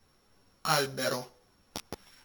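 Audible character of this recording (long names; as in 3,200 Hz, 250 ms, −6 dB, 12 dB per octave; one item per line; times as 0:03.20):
a buzz of ramps at a fixed pitch in blocks of 8 samples
a shimmering, thickened sound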